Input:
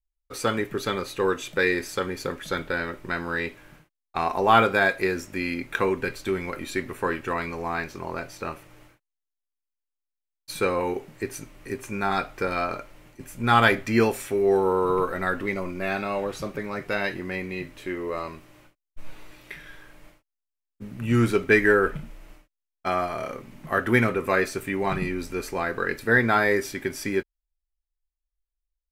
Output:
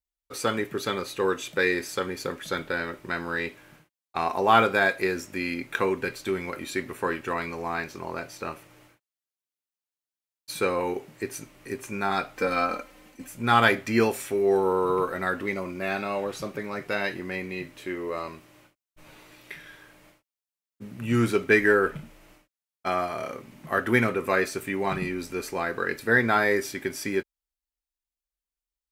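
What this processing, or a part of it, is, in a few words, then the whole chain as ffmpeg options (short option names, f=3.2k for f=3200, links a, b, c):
exciter from parts: -filter_complex "[0:a]highpass=f=110:p=1,asplit=2[a][b];[b]highpass=2.2k,asoftclip=type=tanh:threshold=-30.5dB,volume=-13dB[c];[a][c]amix=inputs=2:normalize=0,asettb=1/sr,asplit=3[d][e][f];[d]atrim=end=12.364[g];[e]atrim=start=12.36:end=13.28,asetpts=PTS-STARTPTS,afade=t=in:d=0.004:c=qsin,afade=t=out:st=0.916:d=0.004:c=qsin,aecho=1:1:3.9:0.81,atrim=end_sample=40572[h];[f]atrim=start=13.276[i];[g][h]acrossfade=d=0.004:c1=hsin:c2=qsin[j];[j][i]acrossfade=d=0.004:c1=qsin:c2=hsin,volume=-1dB"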